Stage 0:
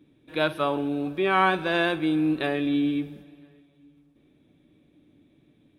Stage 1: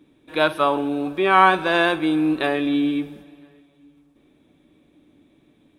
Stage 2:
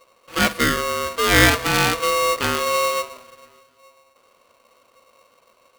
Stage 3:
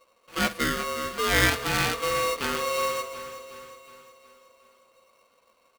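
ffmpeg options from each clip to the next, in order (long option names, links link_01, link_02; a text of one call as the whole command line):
ffmpeg -i in.wav -af "equalizer=frequency=125:width_type=o:width=1:gain=-6,equalizer=frequency=1000:width_type=o:width=1:gain=5,equalizer=frequency=8000:width_type=o:width=1:gain=4,volume=4dB" out.wav
ffmpeg -i in.wav -af "aeval=exprs='val(0)*sgn(sin(2*PI*820*n/s))':channel_layout=same" out.wav
ffmpeg -i in.wav -af "flanger=delay=3.5:depth=2.4:regen=-57:speed=0.91:shape=triangular,aecho=1:1:366|732|1098|1464|1830|2196:0.224|0.121|0.0653|0.0353|0.019|0.0103,volume=-3dB" out.wav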